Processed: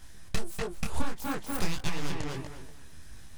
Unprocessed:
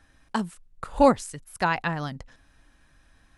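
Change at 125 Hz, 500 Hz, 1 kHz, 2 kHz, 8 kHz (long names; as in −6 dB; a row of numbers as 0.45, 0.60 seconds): −2.0, −13.5, −13.0, −7.5, +0.5 decibels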